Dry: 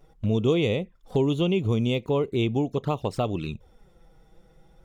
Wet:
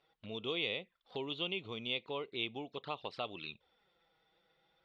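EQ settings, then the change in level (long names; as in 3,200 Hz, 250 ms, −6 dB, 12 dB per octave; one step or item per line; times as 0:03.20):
resonant band-pass 4,400 Hz, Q 2.6
high-frequency loss of the air 450 metres
+13.0 dB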